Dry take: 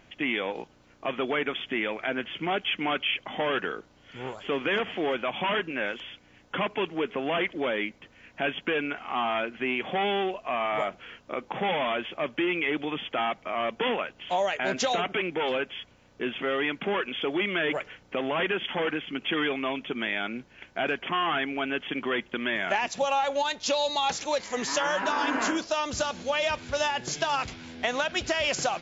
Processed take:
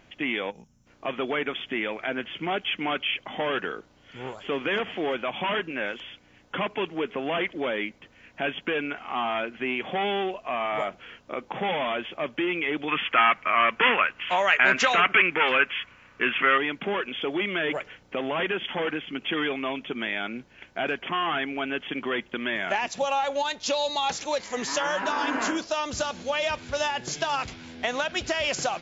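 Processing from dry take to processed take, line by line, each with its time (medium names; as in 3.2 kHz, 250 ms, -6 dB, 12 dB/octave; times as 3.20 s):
0.50–0.87 s: time-frequency box 240–5200 Hz -17 dB
12.88–16.58 s: high-order bell 1.7 kHz +12.5 dB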